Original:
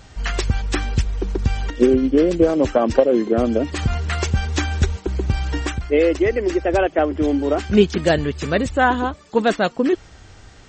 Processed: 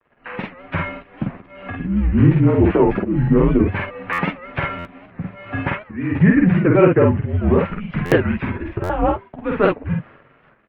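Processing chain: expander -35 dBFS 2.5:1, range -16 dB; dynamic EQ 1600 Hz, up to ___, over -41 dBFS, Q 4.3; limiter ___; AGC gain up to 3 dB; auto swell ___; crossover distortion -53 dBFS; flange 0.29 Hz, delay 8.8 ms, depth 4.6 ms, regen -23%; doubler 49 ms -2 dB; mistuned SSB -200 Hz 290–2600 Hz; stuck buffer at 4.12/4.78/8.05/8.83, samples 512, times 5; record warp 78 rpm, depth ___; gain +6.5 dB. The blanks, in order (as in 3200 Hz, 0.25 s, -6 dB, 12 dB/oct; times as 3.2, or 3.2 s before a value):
-3 dB, -10.5 dBFS, 0.286 s, 160 cents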